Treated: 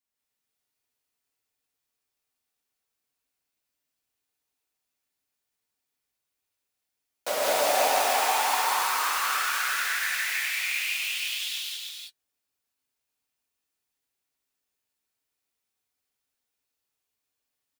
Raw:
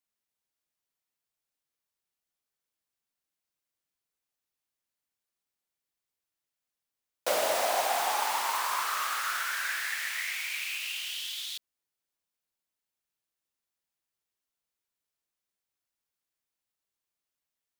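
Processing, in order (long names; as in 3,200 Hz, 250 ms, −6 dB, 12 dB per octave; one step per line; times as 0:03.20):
notch comb filter 170 Hz
single-tap delay 312 ms −3.5 dB
reverb whose tail is shaped and stops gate 220 ms rising, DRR −3 dB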